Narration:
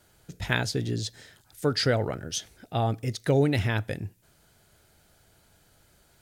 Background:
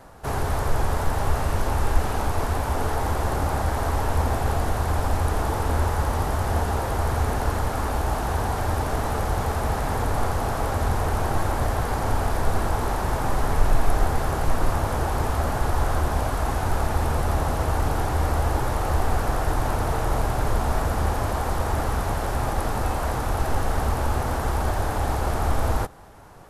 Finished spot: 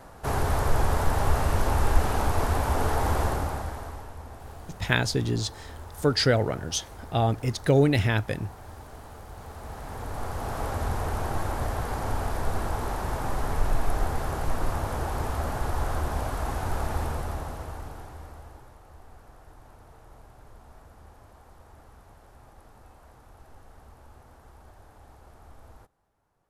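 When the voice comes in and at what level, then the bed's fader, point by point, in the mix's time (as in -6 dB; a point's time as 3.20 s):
4.40 s, +2.5 dB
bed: 3.22 s -0.5 dB
4.16 s -19.5 dB
9.26 s -19.5 dB
10.61 s -5.5 dB
16.99 s -5.5 dB
18.81 s -27.5 dB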